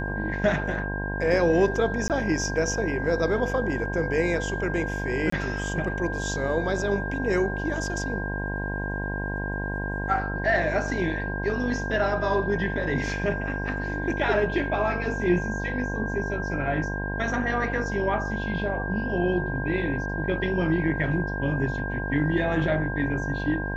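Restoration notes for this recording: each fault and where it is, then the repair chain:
buzz 50 Hz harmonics 21 -31 dBFS
whine 1.6 kHz -32 dBFS
2.08–2.10 s: dropout 18 ms
5.30–5.32 s: dropout 24 ms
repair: band-stop 1.6 kHz, Q 30; de-hum 50 Hz, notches 21; interpolate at 2.08 s, 18 ms; interpolate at 5.30 s, 24 ms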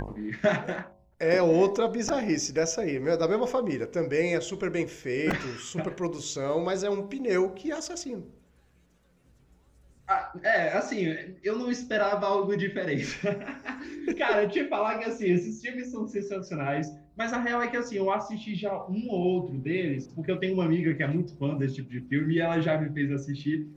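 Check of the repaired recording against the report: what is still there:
nothing left

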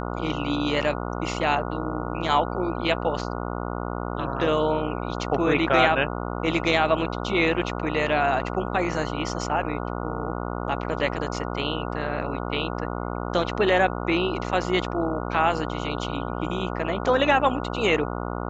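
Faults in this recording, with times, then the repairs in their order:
buzz 60 Hz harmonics 24 -30 dBFS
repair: de-hum 60 Hz, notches 24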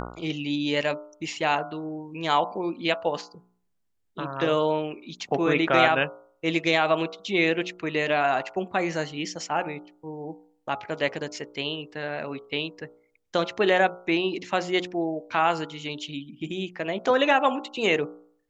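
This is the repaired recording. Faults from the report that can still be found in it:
nothing left

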